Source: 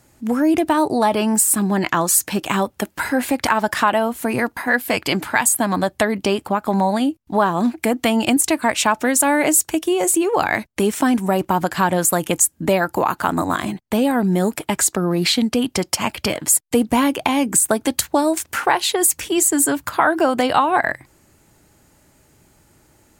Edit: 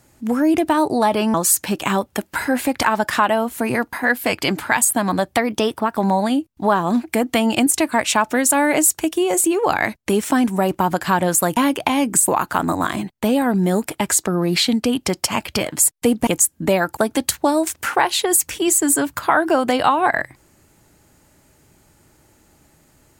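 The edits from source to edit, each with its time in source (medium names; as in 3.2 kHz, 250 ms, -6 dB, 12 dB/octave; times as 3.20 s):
1.34–1.98 s: delete
5.99–6.67 s: speed 110%
12.27–12.97 s: swap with 16.96–17.67 s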